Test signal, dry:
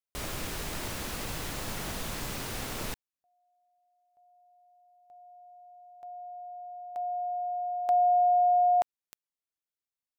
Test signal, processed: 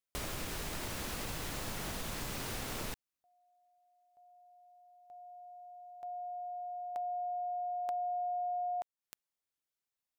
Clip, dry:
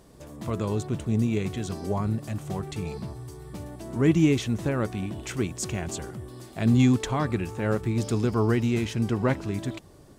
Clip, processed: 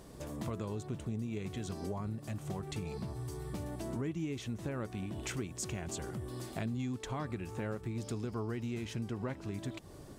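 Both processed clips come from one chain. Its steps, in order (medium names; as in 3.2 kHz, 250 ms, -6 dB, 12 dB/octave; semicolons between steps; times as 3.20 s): compression 6:1, threshold -37 dBFS; trim +1 dB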